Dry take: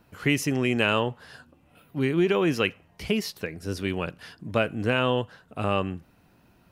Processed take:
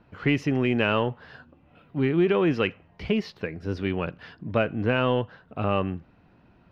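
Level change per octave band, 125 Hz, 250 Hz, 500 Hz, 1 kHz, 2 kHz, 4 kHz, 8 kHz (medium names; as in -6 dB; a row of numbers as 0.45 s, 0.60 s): +1.5 dB, +1.5 dB, +1.0 dB, 0.0 dB, -1.5 dB, -3.5 dB, under -15 dB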